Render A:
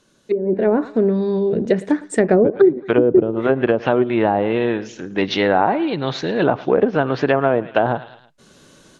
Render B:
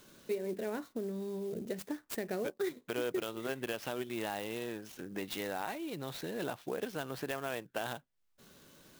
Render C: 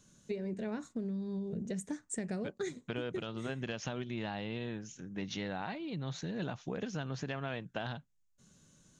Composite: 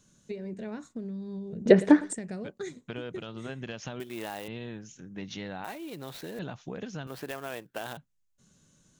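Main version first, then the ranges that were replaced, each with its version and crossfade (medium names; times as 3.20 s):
C
1.66–2.13 s: from A
4.00–4.48 s: from B
5.64–6.39 s: from B
7.07–7.97 s: from B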